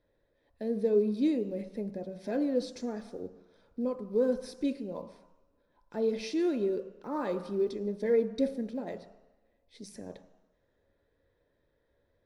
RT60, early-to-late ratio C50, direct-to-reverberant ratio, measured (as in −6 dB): 1.1 s, 12.0 dB, 8.5 dB